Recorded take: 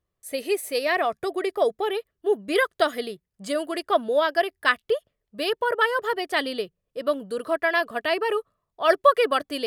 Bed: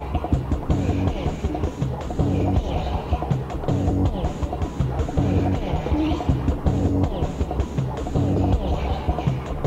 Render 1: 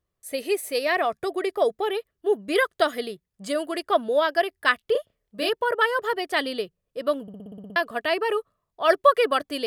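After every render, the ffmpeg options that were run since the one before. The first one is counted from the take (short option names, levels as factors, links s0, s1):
-filter_complex "[0:a]asettb=1/sr,asplit=3[s0][s1][s2];[s0]atrim=end=4.924[s3];[s1]atrim=start=4.92:end=5.49,asetpts=PTS-STARTPTS,afade=t=in:d=0.004:c=qsin,afade=t=out:st=0.566:d=0.004:c=qsin,asplit=2[s4][s5];[s5]adelay=31,volume=0.708[s6];[s4][s6]amix=inputs=2:normalize=0,atrim=end_sample=25137[s7];[s2]atrim=start=5.486[s8];[s3][s7]acrossfade=d=0.004:c1=hsin:c2=qsin[s9];[s9][s8]acrossfade=d=0.004:c1=qsin:c2=hsin,asplit=10[s10][s11][s12][s13][s14][s15][s16][s17][s18][s19];[s10]atrim=end=7.282[s20];[s11]atrim=start=7.218:end=7.282[s21];[s12]atrim=start=7.218:end=7.282[s22];[s13]atrim=start=7.218:end=7.282[s23];[s14]atrim=start=7.218:end=7.282[s24];[s15]atrim=start=7.218:end=7.282[s25];[s16]atrim=start=7.218:end=7.282[s26];[s17]atrim=start=7.218:end=7.282[s27];[s18]atrim=start=7.218:end=7.282[s28];[s19]atrim=start=7.758[s29];[s20][s21]acrossfade=d=0.004:c1=hsin:c2=hsin[s30];[s30][s22]acrossfade=d=0.004:c1=hsin:c2=hsin[s31];[s31][s23]acrossfade=d=0.004:c1=hsin:c2=hsin[s32];[s32][s24]acrossfade=d=0.004:c1=hsin:c2=hsin[s33];[s33][s25]acrossfade=d=0.004:c1=hsin:c2=hsin[s34];[s34][s26]acrossfade=d=0.004:c1=hsin:c2=hsin[s35];[s35][s27]acrossfade=d=0.004:c1=hsin:c2=hsin[s36];[s36][s28]acrossfade=d=0.004:c1=hsin:c2=hsin[s37];[s37][s29]acrossfade=d=0.004:c1=hsin:c2=hsin"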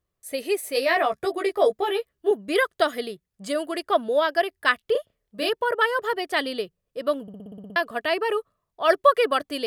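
-filter_complex "[0:a]asettb=1/sr,asplit=3[s0][s1][s2];[s0]atrim=end=0.744[s3];[s1]atrim=start=0.74:end=2.31,asetpts=PTS-STARTPTS,afade=t=in:d=0.004:c=qsin,afade=t=out:st=1.566:d=0.004:c=qsin,asplit=2[s4][s5];[s5]adelay=15,volume=0.708[s6];[s4][s6]amix=inputs=2:normalize=0,atrim=end_sample=69237[s7];[s2]atrim=start=2.306[s8];[s3][s7]acrossfade=d=0.004:c1=hsin:c2=qsin[s9];[s9][s8]acrossfade=d=0.004:c1=qsin:c2=hsin"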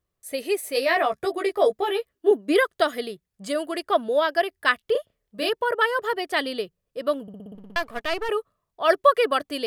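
-filter_complex "[0:a]asettb=1/sr,asplit=3[s0][s1][s2];[s0]atrim=end=2.154[s3];[s1]atrim=start=2.15:end=2.68,asetpts=PTS-STARTPTS,afade=t=in:d=0.004:c=qsin,afade=t=out:st=0.526:d=0.004:c=qsin,lowshelf=f=190:t=q:w=3:g=-11.5[s4];[s2]atrim=start=2.676[s5];[s3][s4]acrossfade=d=0.004:c1=hsin:c2=qsin[s6];[s6][s5]acrossfade=d=0.004:c1=qsin:c2=hsin,asettb=1/sr,asplit=3[s7][s8][s9];[s7]atrim=end=7.554[s10];[s8]atrim=start=7.55:end=8.29,asetpts=PTS-STARTPTS,afade=t=in:d=0.004:c=qsin,afade=t=out:st=0.736:d=0.004:c=qsin,aeval=exprs='if(lt(val(0),0),0.251*val(0),val(0))':c=same[s11];[s9]atrim=start=8.286[s12];[s10][s11]acrossfade=d=0.004:c1=hsin:c2=qsin[s13];[s13][s12]acrossfade=d=0.004:c1=qsin:c2=hsin"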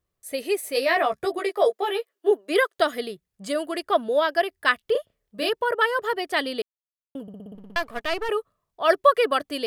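-filter_complex "[0:a]asettb=1/sr,asplit=3[s0][s1][s2];[s0]atrim=end=1.394[s3];[s1]atrim=start=1.39:end=2.79,asetpts=PTS-STARTPTS,afade=t=in:d=0.004:c=qsin,afade=t=out:st=1.396:d=0.004:c=qsin,highpass=f=370:w=0.5412,highpass=f=370:w=1.3066[s4];[s2]atrim=start=2.786[s5];[s3][s4]acrossfade=d=0.004:c1=hsin:c2=qsin[s6];[s6][s5]acrossfade=d=0.004:c1=qsin:c2=hsin,asplit=3[s7][s8][s9];[s7]atrim=end=6.62,asetpts=PTS-STARTPTS,afade=t=out:st=6.616:d=0.004:c=hsin[s10];[s8]atrim=start=6.62:end=7.15,asetpts=PTS-STARTPTS,volume=0[s11];[s9]atrim=start=7.15,asetpts=PTS-STARTPTS,afade=t=in:d=0.004:c=hsin[s12];[s10][s11][s12]concat=n=3:v=0:a=1"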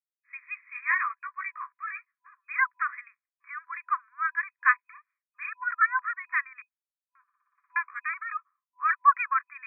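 -af "agate=range=0.0224:threshold=0.00501:ratio=3:detection=peak,afftfilt=real='re*between(b*sr/4096,1000,2500)':imag='im*between(b*sr/4096,1000,2500)':win_size=4096:overlap=0.75"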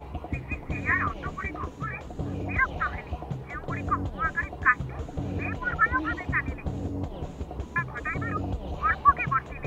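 -filter_complex "[1:a]volume=0.266[s0];[0:a][s0]amix=inputs=2:normalize=0"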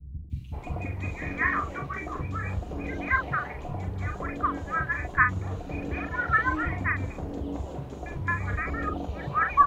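-filter_complex "[0:a]asplit=2[s0][s1];[s1]adelay=42,volume=0.501[s2];[s0][s2]amix=inputs=2:normalize=0,acrossover=split=190|2800[s3][s4][s5];[s5]adelay=300[s6];[s4]adelay=520[s7];[s3][s7][s6]amix=inputs=3:normalize=0"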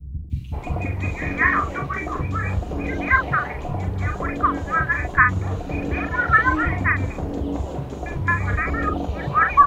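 -af "volume=2.37,alimiter=limit=0.708:level=0:latency=1"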